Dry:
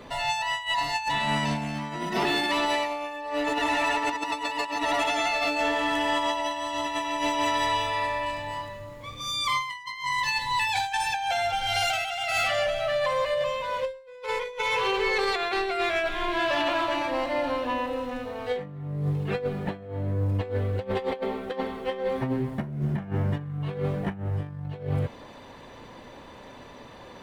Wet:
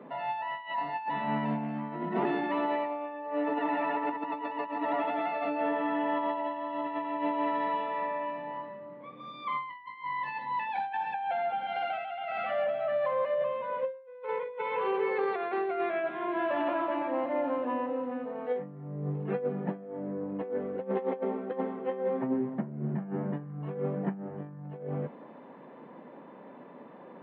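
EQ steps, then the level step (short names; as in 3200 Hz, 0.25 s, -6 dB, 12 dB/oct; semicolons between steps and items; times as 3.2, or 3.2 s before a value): steep high-pass 160 Hz 48 dB/oct; air absorption 410 m; tape spacing loss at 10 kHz 38 dB; +1.0 dB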